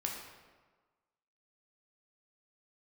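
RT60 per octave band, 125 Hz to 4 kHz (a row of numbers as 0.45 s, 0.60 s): 1.3 s, 1.4 s, 1.4 s, 1.4 s, 1.1 s, 0.90 s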